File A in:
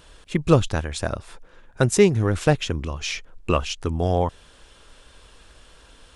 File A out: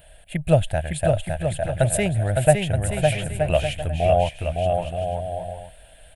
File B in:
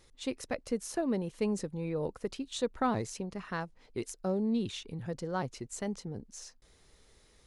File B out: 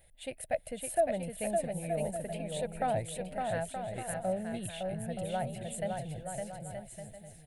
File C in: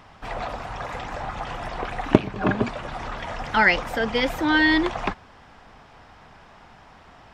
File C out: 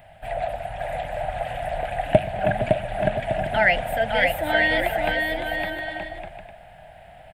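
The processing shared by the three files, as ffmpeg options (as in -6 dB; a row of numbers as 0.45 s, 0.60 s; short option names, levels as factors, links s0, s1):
-af "firequalizer=gain_entry='entry(160,0);entry(230,-11);entry(420,-13);entry(640,11);entry(1100,-20);entry(1600,-1);entry(2900,-1);entry(5700,-19);entry(8800,6);entry(14000,9)':delay=0.05:min_phase=1,aecho=1:1:560|924|1161|1314|1414:0.631|0.398|0.251|0.158|0.1"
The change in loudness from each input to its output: 0.0 LU, 0.0 LU, 0.0 LU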